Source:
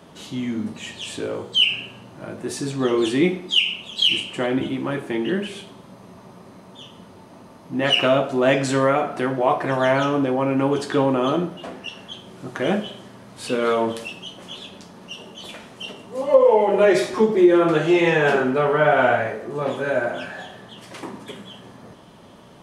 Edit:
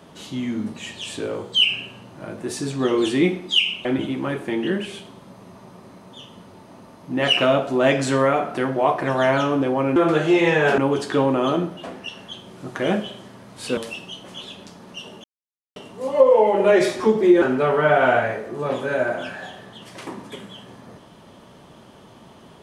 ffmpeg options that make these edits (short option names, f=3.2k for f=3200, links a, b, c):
-filter_complex "[0:a]asplit=8[a][b][c][d][e][f][g][h];[a]atrim=end=3.852[i];[b]atrim=start=4.468:end=10.582[j];[c]atrim=start=17.558:end=18.382[k];[d]atrim=start=10.578:end=13.572[l];[e]atrim=start=13.908:end=15.38,asetpts=PTS-STARTPTS,afade=t=out:st=1.468:d=0.004:c=hsin[m];[f]atrim=start=15.38:end=15.9,asetpts=PTS-STARTPTS,volume=0[n];[g]atrim=start=15.9:end=17.562,asetpts=PTS-STARTPTS,afade=t=in:d=0.004:c=hsin[o];[h]atrim=start=18.378[p];[i][j]acrossfade=d=0.004:c1=hsin:c2=hsin[q];[q][k]acrossfade=d=0.004:c1=hsin:c2=hsin[r];[r][l]acrossfade=d=0.004:c1=hsin:c2=hsin[s];[m][n][o]concat=n=3:v=0:a=1[t];[s][t]acrossfade=d=0.004:c1=hsin:c2=hsin[u];[u][p]acrossfade=d=0.004:c1=hsin:c2=hsin"